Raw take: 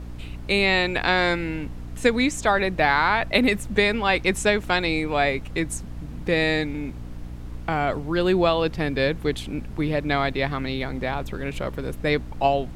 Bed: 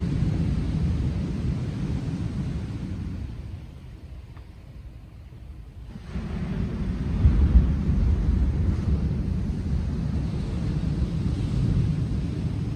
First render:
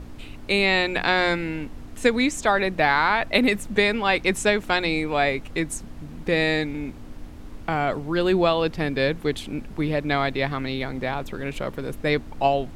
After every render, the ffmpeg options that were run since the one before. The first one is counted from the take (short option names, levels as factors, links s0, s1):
-af "bandreject=f=60:t=h:w=4,bandreject=f=120:t=h:w=4,bandreject=f=180:t=h:w=4"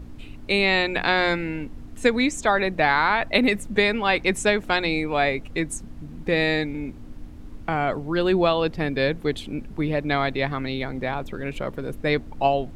-af "afftdn=nr=6:nf=-40"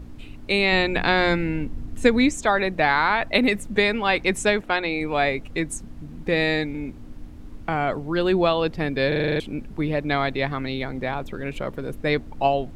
-filter_complex "[0:a]asettb=1/sr,asplit=3[s0][s1][s2];[s0]atrim=end=0.724[s3];[s1]atrim=start=0.72:end=2.33,asetpts=PTS-STARTPTS,afade=t=in:d=0.004:c=qsin,afade=t=out:st=1.606:d=0.004:c=qsin,lowshelf=f=270:g=7.5[s4];[s2]atrim=start=2.326[s5];[s3][s4]acrossfade=d=0.004:c1=hsin:c2=qsin[s6];[s6][s5]acrossfade=d=0.004:c1=qsin:c2=hsin,asettb=1/sr,asplit=3[s7][s8][s9];[s7]atrim=end=4.614[s10];[s8]atrim=start=4.61:end=5.01,asetpts=PTS-STARTPTS,afade=t=in:d=0.004:c=qsin,afade=t=out:st=0.396:d=0.004:c=qsin,bass=f=250:g=-7,treble=f=4000:g=-10[s11];[s9]atrim=start=5.006[s12];[s10][s11]acrossfade=d=0.004:c1=hsin:c2=qsin[s13];[s13][s12]acrossfade=d=0.004:c1=qsin:c2=hsin,asplit=9[s14][s15][s16][s17][s18][s19][s20][s21][s22];[s14]atrim=end=9.122[s23];[s15]atrim=start=9.078:end=9.122[s24];[s16]atrim=start=9.078:end=9.122[s25];[s17]atrim=start=9.078:end=9.122[s26];[s18]atrim=start=9.078:end=9.122[s27];[s19]atrim=start=9.078:end=9.122[s28];[s20]atrim=start=9.078:end=9.122[s29];[s21]atrim=start=9.078:end=9.122[s30];[s22]atrim=start=9.398[s31];[s23][s24]acrossfade=d=0.004:c1=hsin:c2=hsin[s32];[s32][s25]acrossfade=d=0.004:c1=hsin:c2=hsin[s33];[s33][s26]acrossfade=d=0.004:c1=hsin:c2=hsin[s34];[s34][s27]acrossfade=d=0.004:c1=hsin:c2=hsin[s35];[s35][s28]acrossfade=d=0.004:c1=hsin:c2=hsin[s36];[s36][s29]acrossfade=d=0.004:c1=hsin:c2=hsin[s37];[s37][s30]acrossfade=d=0.004:c1=hsin:c2=hsin[s38];[s38][s31]acrossfade=d=0.004:c1=hsin:c2=hsin"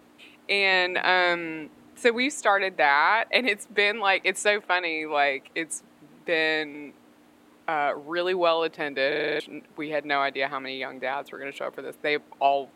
-af "highpass=480,equalizer=f=5400:t=o:w=0.53:g=-5"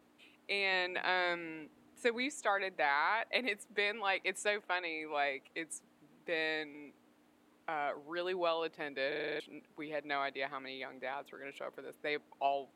-af "volume=0.266"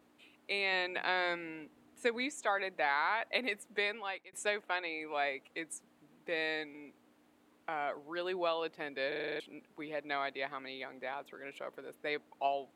-filter_complex "[0:a]asplit=2[s0][s1];[s0]atrim=end=4.33,asetpts=PTS-STARTPTS,afade=t=out:st=3.85:d=0.48[s2];[s1]atrim=start=4.33,asetpts=PTS-STARTPTS,afade=t=in:d=0.004:c=hsin[s3];[s2][s3]concat=n=2:v=0:a=1"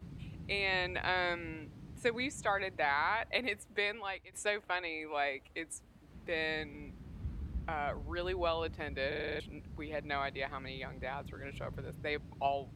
-filter_complex "[1:a]volume=0.075[s0];[0:a][s0]amix=inputs=2:normalize=0"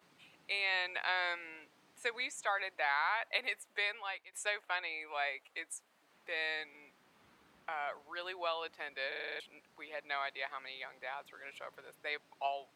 -af "highpass=740"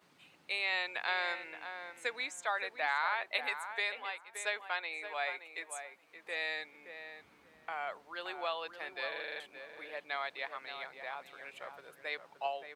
-filter_complex "[0:a]asplit=2[s0][s1];[s1]adelay=573,lowpass=f=1800:p=1,volume=0.398,asplit=2[s2][s3];[s3]adelay=573,lowpass=f=1800:p=1,volume=0.19,asplit=2[s4][s5];[s5]adelay=573,lowpass=f=1800:p=1,volume=0.19[s6];[s0][s2][s4][s6]amix=inputs=4:normalize=0"